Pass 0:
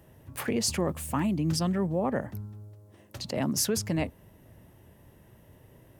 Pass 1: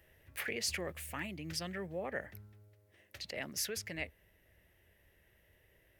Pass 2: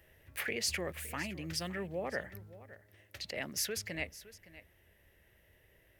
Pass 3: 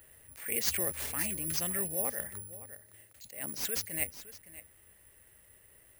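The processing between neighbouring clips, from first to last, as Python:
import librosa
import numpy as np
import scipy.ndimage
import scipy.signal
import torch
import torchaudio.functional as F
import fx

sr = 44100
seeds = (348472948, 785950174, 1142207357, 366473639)

y1 = fx.graphic_eq_10(x, sr, hz=(125, 250, 1000, 2000, 8000), db=(-12, -12, -12, 10, -5))
y1 = fx.rider(y1, sr, range_db=3, speed_s=2.0)
y1 = y1 * librosa.db_to_amplitude(-6.0)
y2 = y1 + 10.0 ** (-17.0 / 20.0) * np.pad(y1, (int(563 * sr / 1000.0), 0))[:len(y1)]
y2 = y2 * librosa.db_to_amplitude(2.0)
y3 = (np.kron(y2[::4], np.eye(4)[0]) * 4)[:len(y2)]
y3 = fx.attack_slew(y3, sr, db_per_s=120.0)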